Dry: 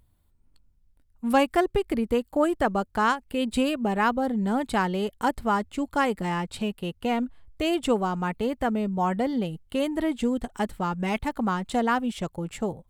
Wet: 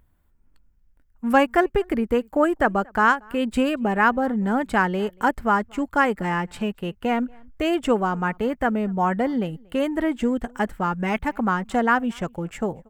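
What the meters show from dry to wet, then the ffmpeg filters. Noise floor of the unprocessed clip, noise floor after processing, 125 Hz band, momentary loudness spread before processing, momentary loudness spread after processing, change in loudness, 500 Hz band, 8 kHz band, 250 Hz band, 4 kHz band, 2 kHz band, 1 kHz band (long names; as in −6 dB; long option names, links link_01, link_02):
−64 dBFS, −60 dBFS, +2.0 dB, 7 LU, 8 LU, +3.5 dB, +3.0 dB, −2.0 dB, +2.5 dB, −1.0 dB, +7.0 dB, +4.0 dB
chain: -filter_complex "[0:a]equalizer=frequency=100:width_type=o:width=0.67:gain=-6,equalizer=frequency=1600:width_type=o:width=0.67:gain=6,equalizer=frequency=4000:width_type=o:width=0.67:gain=-9,equalizer=frequency=10000:width_type=o:width=0.67:gain=-8,asplit=2[link_01][link_02];[link_02]adelay=233.2,volume=-28dB,highshelf=frequency=4000:gain=-5.25[link_03];[link_01][link_03]amix=inputs=2:normalize=0,volume=3dB"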